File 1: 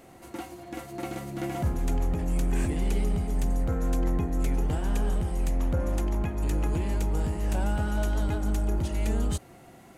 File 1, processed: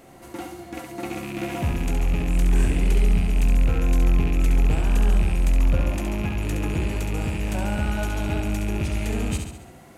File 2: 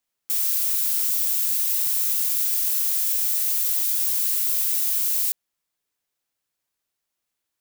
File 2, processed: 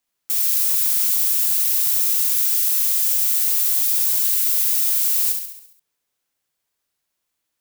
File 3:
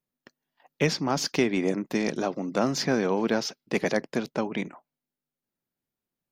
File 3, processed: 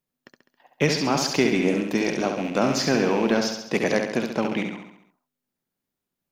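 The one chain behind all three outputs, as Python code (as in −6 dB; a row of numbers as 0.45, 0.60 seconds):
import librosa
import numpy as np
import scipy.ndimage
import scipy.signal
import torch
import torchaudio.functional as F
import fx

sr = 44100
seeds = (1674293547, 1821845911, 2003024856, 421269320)

y = fx.rattle_buzz(x, sr, strikes_db=-35.0, level_db=-28.0)
y = fx.echo_feedback(y, sr, ms=68, feedback_pct=54, wet_db=-5.5)
y = y * librosa.db_to_amplitude(2.5)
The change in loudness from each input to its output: +5.0, +4.0, +4.0 LU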